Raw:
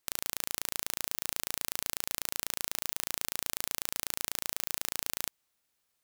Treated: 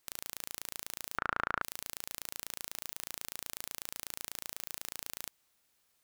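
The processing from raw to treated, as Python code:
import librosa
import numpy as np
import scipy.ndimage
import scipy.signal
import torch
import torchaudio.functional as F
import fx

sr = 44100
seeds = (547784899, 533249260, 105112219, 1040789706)

y = fx.lowpass_res(x, sr, hz=1400.0, q=5.3, at=(1.18, 1.62))
y = np.clip(y, -10.0 ** (-16.5 / 20.0), 10.0 ** (-16.5 / 20.0))
y = y * 10.0 ** (4.5 / 20.0)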